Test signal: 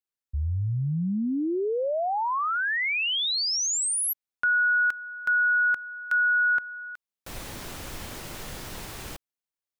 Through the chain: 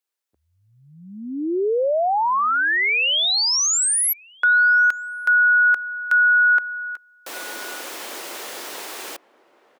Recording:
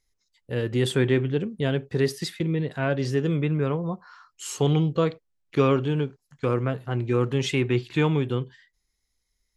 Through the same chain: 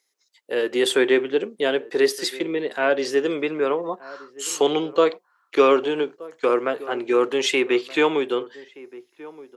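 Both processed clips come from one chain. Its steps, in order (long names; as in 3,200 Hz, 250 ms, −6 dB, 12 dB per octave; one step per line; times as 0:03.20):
high-pass filter 340 Hz 24 dB per octave
slap from a distant wall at 210 metres, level −19 dB
level +7 dB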